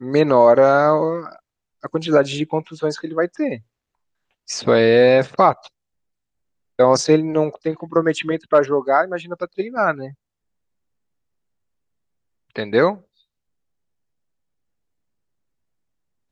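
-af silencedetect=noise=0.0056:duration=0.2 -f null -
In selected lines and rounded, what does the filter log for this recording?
silence_start: 1.39
silence_end: 1.83 | silence_duration: 0.44
silence_start: 3.62
silence_end: 4.48 | silence_duration: 0.86
silence_start: 5.68
silence_end: 6.79 | silence_duration: 1.11
silence_start: 10.14
silence_end: 12.51 | silence_duration: 2.37
silence_start: 13.01
silence_end: 16.31 | silence_duration: 3.31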